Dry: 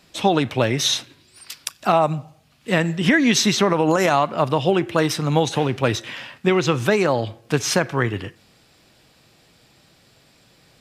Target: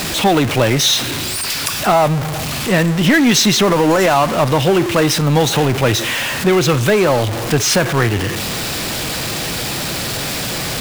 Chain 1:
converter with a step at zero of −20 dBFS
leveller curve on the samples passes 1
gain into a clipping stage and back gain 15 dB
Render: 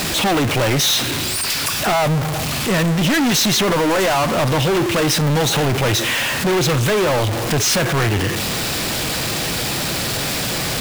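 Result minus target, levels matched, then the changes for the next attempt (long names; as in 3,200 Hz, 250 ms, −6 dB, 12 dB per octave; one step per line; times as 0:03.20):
gain into a clipping stage and back: distortion +36 dB
change: gain into a clipping stage and back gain 4.5 dB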